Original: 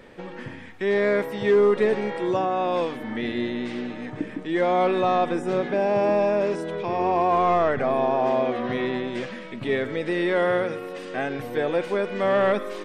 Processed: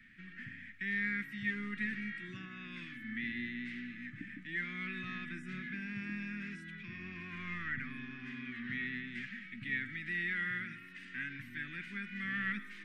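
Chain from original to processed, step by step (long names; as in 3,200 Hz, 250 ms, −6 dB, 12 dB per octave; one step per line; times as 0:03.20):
elliptic band-stop filter 220–1,900 Hz, stop band 50 dB
three-way crossover with the lows and the highs turned down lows −15 dB, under 410 Hz, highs −20 dB, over 2,000 Hz
level +2.5 dB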